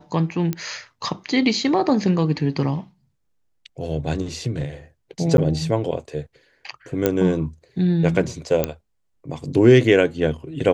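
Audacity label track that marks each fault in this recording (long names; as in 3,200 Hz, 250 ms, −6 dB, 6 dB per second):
0.530000	0.530000	click −11 dBFS
5.370000	5.380000	drop-out 11 ms
7.060000	7.060000	click −5 dBFS
8.640000	8.640000	click −6 dBFS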